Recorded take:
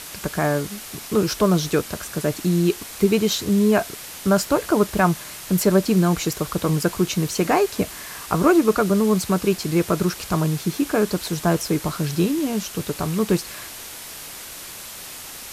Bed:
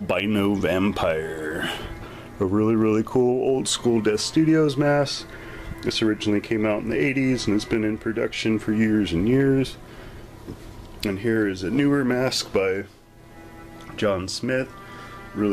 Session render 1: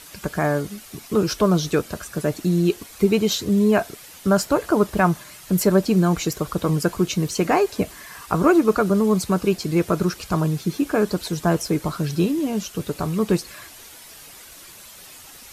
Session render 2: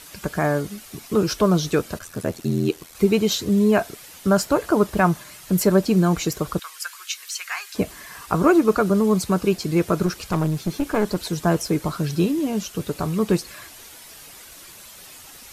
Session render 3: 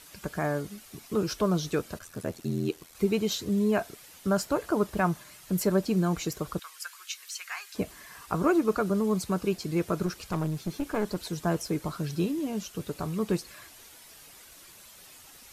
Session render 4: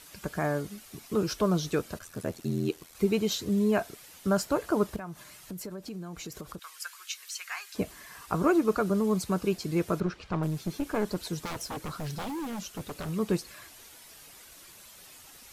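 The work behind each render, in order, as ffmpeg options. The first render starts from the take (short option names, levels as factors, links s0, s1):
-af "afftdn=nr=9:nf=-37"
-filter_complex "[0:a]asplit=3[s0][s1][s2];[s0]afade=t=out:st=1.98:d=0.02[s3];[s1]aeval=exprs='val(0)*sin(2*PI*41*n/s)':c=same,afade=t=in:st=1.98:d=0.02,afade=t=out:st=2.93:d=0.02[s4];[s2]afade=t=in:st=2.93:d=0.02[s5];[s3][s4][s5]amix=inputs=3:normalize=0,asettb=1/sr,asplit=3[s6][s7][s8];[s6]atrim=end=6.594[s9];[s7]atrim=start=6.59:end=7.75,asetpts=PTS-STARTPTS,afade=t=in:d=0.004:c=qsin,afade=t=out:st=1.156:d=0.004:c=qsin,highpass=f=1400:w=0.5412,highpass=f=1400:w=1.3066[s10];[s8]atrim=start=7.746[s11];[s9][s10]acrossfade=d=0.004:c1=hsin:c2=qsin[s12];[s12][s11]acrossfade=d=0.004:c1=qsin:c2=hsin,asettb=1/sr,asplit=3[s13][s14][s15];[s13]atrim=end=10.064[s16];[s14]atrim=start=10.06:end=11.18,asetpts=PTS-STARTPTS,afade=t=in:d=0.004:c=qsin,afade=t=out:st=1.116:d=0.004:c=qsin,aeval=exprs='clip(val(0),-1,0.0668)':c=same[s17];[s15]atrim=start=11.176[s18];[s16][s17]acrossfade=d=0.004:c1=hsin:c2=qsin[s19];[s19][s18]acrossfade=d=0.004:c1=qsin:c2=hsin"
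-af "volume=0.398"
-filter_complex "[0:a]asettb=1/sr,asplit=3[s0][s1][s2];[s0]atrim=end=4.964[s3];[s1]atrim=start=4.96:end=6.8,asetpts=PTS-STARTPTS,afade=t=in:d=0.004:c=qsin,afade=t=out:st=1.836:d=0.004:c=qsin,acompressor=threshold=0.0141:ratio=5:attack=3.2:release=140:knee=1:detection=peak[s4];[s2]atrim=start=6.796[s5];[s3][s4]acrossfade=d=0.004:c1=hsin:c2=qsin[s6];[s6][s5]acrossfade=d=0.004:c1=qsin:c2=hsin,asettb=1/sr,asplit=3[s7][s8][s9];[s7]atrim=end=10.004[s10];[s8]atrim=start=10:end=10.43,asetpts=PTS-STARTPTS,afade=t=in:d=0.004:c=qsin,afade=t=out:st=0.426:d=0.004:c=qsin,lowpass=3300[s11];[s9]atrim=start=10.426[s12];[s10][s11]acrossfade=d=0.004:c1=hsin:c2=qsin[s13];[s13][s12]acrossfade=d=0.004:c1=qsin:c2=hsin,asettb=1/sr,asplit=3[s14][s15][s16];[s14]atrim=end=11.454[s17];[s15]atrim=start=11.45:end=13.09,asetpts=PTS-STARTPTS,afade=t=in:d=0.004:c=qsin,afade=t=out:st=1.636:d=0.004:c=qsin,aeval=exprs='0.0316*(abs(mod(val(0)/0.0316+3,4)-2)-1)':c=same[s18];[s16]atrim=start=13.086[s19];[s17][s18]acrossfade=d=0.004:c1=hsin:c2=qsin[s20];[s20][s19]acrossfade=d=0.004:c1=qsin:c2=hsin"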